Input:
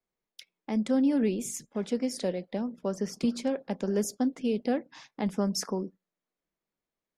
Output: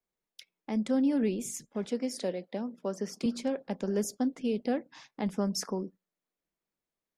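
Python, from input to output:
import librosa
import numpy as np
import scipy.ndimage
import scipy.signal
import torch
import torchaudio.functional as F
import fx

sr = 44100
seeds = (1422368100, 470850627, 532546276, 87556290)

y = fx.highpass(x, sr, hz=190.0, slope=12, at=(1.85, 3.26))
y = y * librosa.db_to_amplitude(-2.0)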